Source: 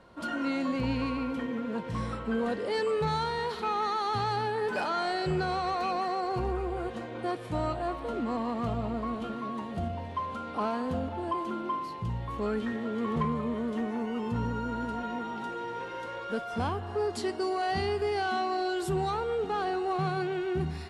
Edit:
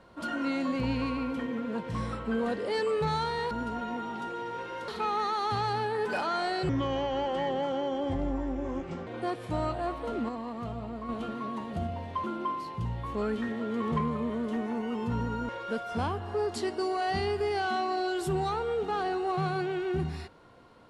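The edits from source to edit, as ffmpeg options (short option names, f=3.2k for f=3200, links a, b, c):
-filter_complex "[0:a]asplit=9[a][b][c][d][e][f][g][h][i];[a]atrim=end=3.512[j];[b]atrim=start=14.728:end=16.102[k];[c]atrim=start=3.508:end=5.324[l];[d]atrim=start=5.32:end=7.08,asetpts=PTS-STARTPTS,asetrate=32634,aresample=44100,atrim=end_sample=104886,asetpts=PTS-STARTPTS[m];[e]atrim=start=7.076:end=8.302[n];[f]atrim=start=8.298:end=9.102,asetpts=PTS-STARTPTS,volume=-5.5dB[o];[g]atrim=start=9.098:end=10.252[p];[h]atrim=start=11.478:end=14.732[q];[i]atrim=start=16.098[r];[j][k]acrossfade=d=0.004:c1=hsin:c2=hsin[s];[s][l]acrossfade=d=0.004:c1=hsin:c2=hsin[t];[t][m]acrossfade=d=0.004:c1=hsin:c2=hsin[u];[u][n]acrossfade=d=0.004:c1=hsin:c2=hsin[v];[v][o]acrossfade=d=0.004:c1=hsin:c2=hsin[w];[w][p]acrossfade=d=0.004:c1=hsin:c2=hsin[x];[x][q]acrossfade=d=0.004:c1=hsin:c2=hsin[y];[y][r]acrossfade=d=0.004:c1=hsin:c2=hsin"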